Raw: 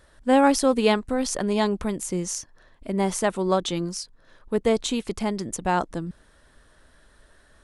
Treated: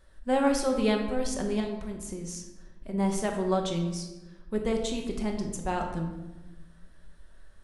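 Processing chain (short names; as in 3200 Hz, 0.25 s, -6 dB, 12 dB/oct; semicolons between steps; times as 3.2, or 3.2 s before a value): low shelf 69 Hz +12 dB; 1.6–2.94 compressor, threshold -28 dBFS, peak gain reduction 10.5 dB; shoebox room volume 550 m³, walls mixed, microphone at 1.1 m; gain -8.5 dB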